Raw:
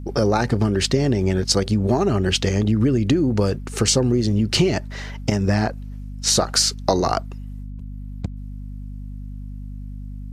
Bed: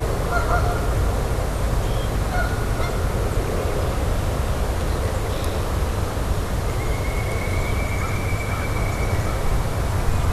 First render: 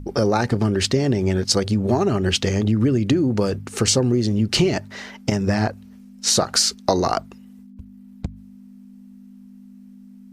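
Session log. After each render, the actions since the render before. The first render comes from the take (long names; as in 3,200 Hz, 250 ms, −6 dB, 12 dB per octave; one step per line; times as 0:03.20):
hum removal 50 Hz, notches 3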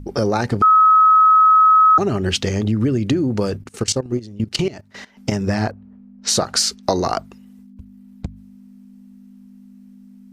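0:00.62–0:01.98: beep over 1,280 Hz −8 dBFS
0:03.57–0:05.17: output level in coarse steps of 18 dB
0:05.71–0:06.83: low-pass that shuts in the quiet parts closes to 960 Hz, open at −17 dBFS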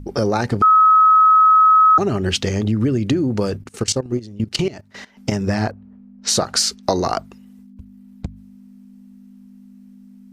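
no processing that can be heard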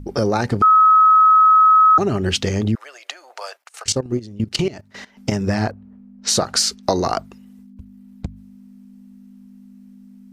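0:02.75–0:03.86: elliptic high-pass filter 660 Hz, stop band 70 dB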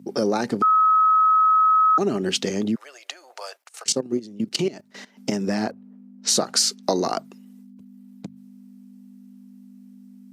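high-pass filter 190 Hz 24 dB per octave
parametric band 1,400 Hz −5.5 dB 2.9 octaves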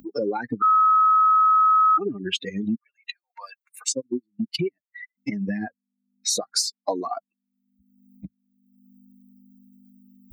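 spectral dynamics exaggerated over time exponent 3
upward compression, threshold −20 dBFS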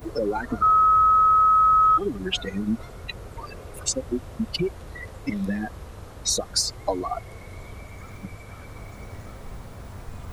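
mix in bed −17.5 dB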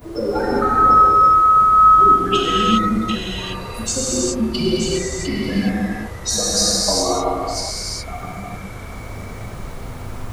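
delay that plays each chunk backwards 545 ms, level −7 dB
reverb whose tail is shaped and stops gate 440 ms flat, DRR −7.5 dB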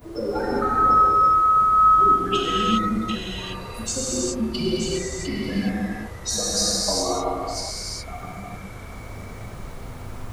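level −5 dB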